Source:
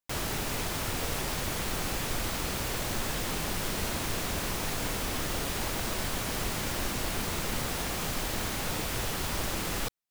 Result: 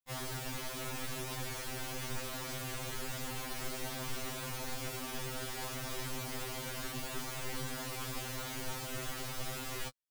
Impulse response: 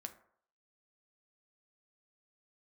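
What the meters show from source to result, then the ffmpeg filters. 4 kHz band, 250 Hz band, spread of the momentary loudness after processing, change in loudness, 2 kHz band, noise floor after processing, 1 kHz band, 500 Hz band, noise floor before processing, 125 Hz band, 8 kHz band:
−8.0 dB, −9.0 dB, 1 LU, −8.0 dB, −8.0 dB, −42 dBFS, −8.0 dB, −7.5 dB, −34 dBFS, −7.5 dB, −8.0 dB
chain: -af "afftfilt=real='re*2.45*eq(mod(b,6),0)':imag='im*2.45*eq(mod(b,6),0)':win_size=2048:overlap=0.75,volume=-5.5dB"

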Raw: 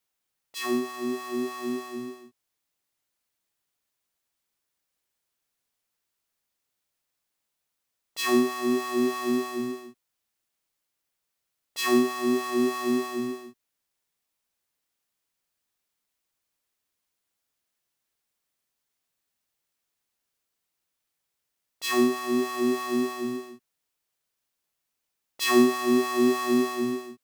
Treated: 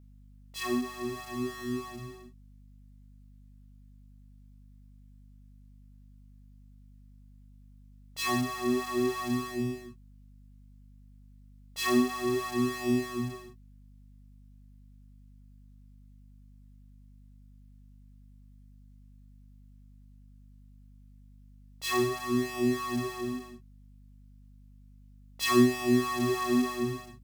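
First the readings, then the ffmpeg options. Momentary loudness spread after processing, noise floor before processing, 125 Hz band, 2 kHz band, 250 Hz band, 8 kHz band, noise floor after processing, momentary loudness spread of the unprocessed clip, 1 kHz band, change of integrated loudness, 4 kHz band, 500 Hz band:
13 LU, −82 dBFS, +11.0 dB, −3.0 dB, −3.5 dB, −3.0 dB, −54 dBFS, 12 LU, −3.5 dB, −4.0 dB, −3.0 dB, −5.0 dB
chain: -af "flanger=delay=16.5:depth=7.2:speed=0.31,lowshelf=frequency=190:width_type=q:width=1.5:gain=11,aeval=exprs='val(0)+0.00224*(sin(2*PI*50*n/s)+sin(2*PI*2*50*n/s)/2+sin(2*PI*3*50*n/s)/3+sin(2*PI*4*50*n/s)/4+sin(2*PI*5*50*n/s)/5)':channel_layout=same"

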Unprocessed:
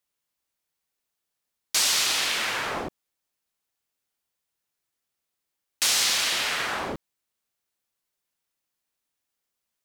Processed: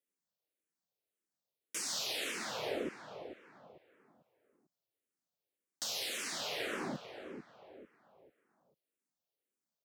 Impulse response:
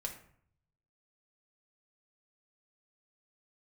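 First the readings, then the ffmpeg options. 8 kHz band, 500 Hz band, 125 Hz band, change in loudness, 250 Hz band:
−15.5 dB, −4.0 dB, −7.5 dB, −15.5 dB, −3.5 dB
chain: -filter_complex "[0:a]highpass=150,lowshelf=frequency=740:width_type=q:width=1.5:gain=7.5,alimiter=limit=-16.5dB:level=0:latency=1:release=496,asplit=2[link_01][link_02];[link_02]adelay=445,lowpass=frequency=2800:poles=1,volume=-9.5dB,asplit=2[link_03][link_04];[link_04]adelay=445,lowpass=frequency=2800:poles=1,volume=0.37,asplit=2[link_05][link_06];[link_06]adelay=445,lowpass=frequency=2800:poles=1,volume=0.37,asplit=2[link_07][link_08];[link_08]adelay=445,lowpass=frequency=2800:poles=1,volume=0.37[link_09];[link_01][link_03][link_05][link_07][link_09]amix=inputs=5:normalize=0,asplit=2[link_10][link_11];[link_11]afreqshift=-1.8[link_12];[link_10][link_12]amix=inputs=2:normalize=1,volume=-8dB"

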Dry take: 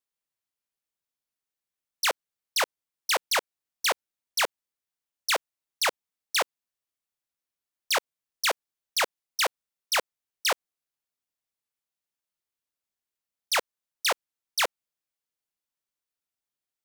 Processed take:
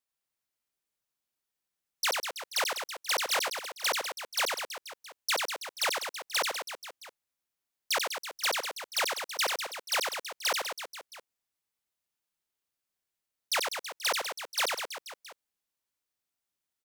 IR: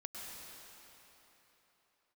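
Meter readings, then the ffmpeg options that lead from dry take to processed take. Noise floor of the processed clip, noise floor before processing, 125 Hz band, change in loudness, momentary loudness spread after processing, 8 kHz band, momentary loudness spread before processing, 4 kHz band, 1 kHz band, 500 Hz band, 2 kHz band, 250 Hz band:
below −85 dBFS, below −85 dBFS, can't be measured, −2.5 dB, 10 LU, −1.5 dB, 5 LU, −1.5 dB, −2.5 dB, −2.5 dB, −2.5 dB, −2.5 dB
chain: -filter_complex "[0:a]alimiter=limit=-22.5dB:level=0:latency=1,asplit=2[link_01][link_02];[link_02]aecho=0:1:90|198|327.6|483.1|669.7:0.631|0.398|0.251|0.158|0.1[link_03];[link_01][link_03]amix=inputs=2:normalize=0"

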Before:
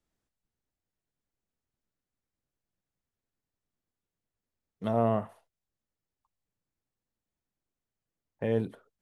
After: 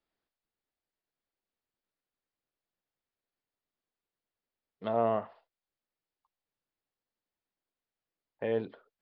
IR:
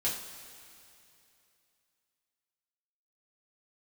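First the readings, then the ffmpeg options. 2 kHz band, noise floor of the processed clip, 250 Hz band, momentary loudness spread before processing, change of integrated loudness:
0.0 dB, below −85 dBFS, −6.5 dB, 12 LU, −2.0 dB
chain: -af "aresample=11025,aresample=44100,bass=frequency=250:gain=-12,treble=frequency=4000:gain=-1"

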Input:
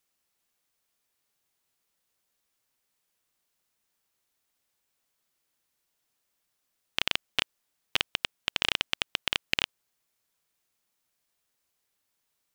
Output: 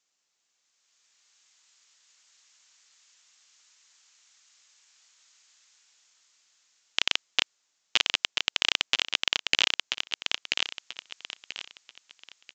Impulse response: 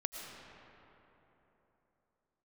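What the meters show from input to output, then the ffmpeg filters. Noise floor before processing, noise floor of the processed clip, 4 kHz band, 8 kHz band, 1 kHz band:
−79 dBFS, −77 dBFS, +5.0 dB, +8.0 dB, +2.0 dB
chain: -filter_complex "[0:a]aemphasis=mode=production:type=bsi,acrossover=split=1000[link_01][link_02];[link_02]dynaudnorm=framelen=120:gausssize=17:maxgain=14.5dB[link_03];[link_01][link_03]amix=inputs=2:normalize=0,aecho=1:1:986|1972|2958|3944:0.668|0.194|0.0562|0.0163,aresample=16000,aresample=44100"

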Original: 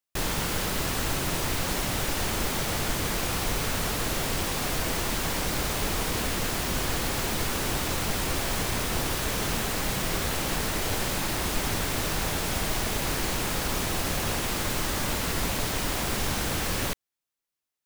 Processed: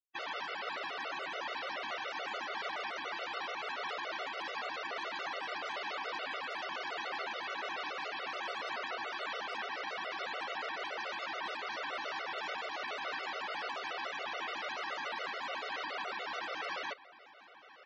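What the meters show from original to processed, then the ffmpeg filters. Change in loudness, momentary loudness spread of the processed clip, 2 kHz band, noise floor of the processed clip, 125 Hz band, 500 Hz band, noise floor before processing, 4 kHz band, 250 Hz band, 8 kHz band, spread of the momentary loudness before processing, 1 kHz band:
−11.0 dB, 1 LU, −5.5 dB, −57 dBFS, below −35 dB, −10.0 dB, below −85 dBFS, −10.5 dB, −22.0 dB, −29.0 dB, 0 LU, −5.0 dB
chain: -filter_complex "[0:a]asplit=2[link_01][link_02];[link_02]highpass=frequency=720:poles=1,volume=29dB,asoftclip=type=tanh:threshold=-14dB[link_03];[link_01][link_03]amix=inputs=2:normalize=0,lowpass=frequency=1800:poles=1,volume=-6dB,afftfilt=real='re*gte(hypot(re,im),0.0355)':imag='im*gte(hypot(re,im),0.0355)':win_size=1024:overlap=0.75,lowpass=5700,alimiter=level_in=3dB:limit=-24dB:level=0:latency=1:release=438,volume=-3dB,highpass=530,asplit=2[link_04][link_05];[link_05]adelay=1049,lowpass=frequency=3800:poles=1,volume=-16.5dB,asplit=2[link_06][link_07];[link_07]adelay=1049,lowpass=frequency=3800:poles=1,volume=0.16[link_08];[link_06][link_08]amix=inputs=2:normalize=0[link_09];[link_04][link_09]amix=inputs=2:normalize=0,afftfilt=real='re*gt(sin(2*PI*7*pts/sr)*(1-2*mod(floor(b*sr/1024/380),2)),0)':imag='im*gt(sin(2*PI*7*pts/sr)*(1-2*mod(floor(b*sr/1024/380),2)),0)':win_size=1024:overlap=0.75"

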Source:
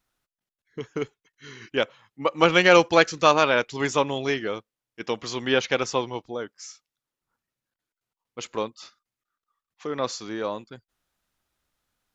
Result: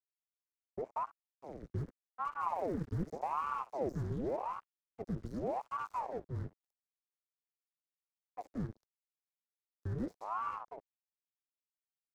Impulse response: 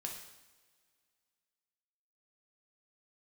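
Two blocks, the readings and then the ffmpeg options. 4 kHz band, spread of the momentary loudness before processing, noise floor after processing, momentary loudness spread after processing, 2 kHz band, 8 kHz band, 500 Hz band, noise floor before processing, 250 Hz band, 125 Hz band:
below −35 dB, 20 LU, below −85 dBFS, 13 LU, −28.5 dB, can't be measured, −18.5 dB, below −85 dBFS, −13.0 dB, −5.0 dB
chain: -filter_complex "[0:a]aeval=exprs='(tanh(25.1*val(0)+0.8)-tanh(0.8))/25.1':channel_layout=same,tiltshelf=frequency=1500:gain=4,asplit=2[link_01][link_02];[link_02]aecho=0:1:67|134|201:0.211|0.0507|0.0122[link_03];[link_01][link_03]amix=inputs=2:normalize=0,aeval=exprs='max(val(0),0)':channel_layout=same,acrossover=split=350|1700[link_04][link_05][link_06];[link_06]alimiter=level_in=22dB:limit=-24dB:level=0:latency=1,volume=-22dB[link_07];[link_04][link_05][link_07]amix=inputs=3:normalize=0,firequalizer=gain_entry='entry(270,0);entry(450,-26);entry(1600,-12);entry(2400,-28);entry(5000,-15)':delay=0.05:min_phase=1,aeval=exprs='sgn(val(0))*max(abs(val(0))-0.00133,0)':channel_layout=same,acrossover=split=160|3000[link_08][link_09][link_10];[link_09]acompressor=threshold=-49dB:ratio=6[link_11];[link_08][link_11][link_10]amix=inputs=3:normalize=0,aeval=exprs='val(0)*sin(2*PI*630*n/s+630*0.85/0.86*sin(2*PI*0.86*n/s))':channel_layout=same,volume=12.5dB"

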